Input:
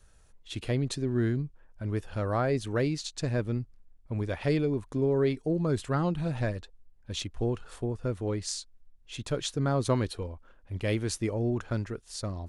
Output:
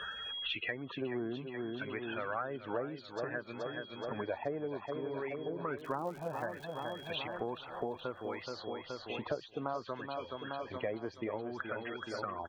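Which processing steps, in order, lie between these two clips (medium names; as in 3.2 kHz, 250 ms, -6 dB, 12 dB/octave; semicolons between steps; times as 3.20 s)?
coarse spectral quantiser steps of 15 dB; whistle 3.3 kHz -61 dBFS; in parallel at -2 dB: compression, threshold -39 dBFS, peak gain reduction 17 dB; on the sum: low-pass that closes with the level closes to 1.2 kHz, closed at -22 dBFS; loudest bins only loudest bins 64; LFO band-pass sine 0.61 Hz 750–2600 Hz; 5.78–7.39 s: crackle 130 per s -53 dBFS; on a send: feedback delay 425 ms, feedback 54%, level -10 dB; on the sum: three bands compressed up and down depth 100%; trim +4.5 dB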